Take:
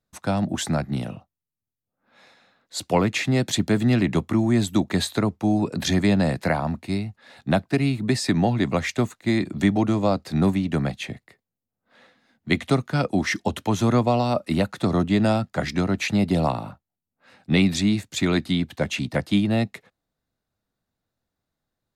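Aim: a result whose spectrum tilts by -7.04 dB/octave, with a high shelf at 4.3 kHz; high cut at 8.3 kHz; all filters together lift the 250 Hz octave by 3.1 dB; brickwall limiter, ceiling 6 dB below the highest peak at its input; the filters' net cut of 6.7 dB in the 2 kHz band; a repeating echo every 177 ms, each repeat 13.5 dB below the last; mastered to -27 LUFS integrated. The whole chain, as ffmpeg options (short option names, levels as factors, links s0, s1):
-af "lowpass=8300,equalizer=f=250:t=o:g=4,equalizer=f=2000:t=o:g=-7.5,highshelf=f=4300:g=-3.5,alimiter=limit=0.266:level=0:latency=1,aecho=1:1:177|354:0.211|0.0444,volume=0.596"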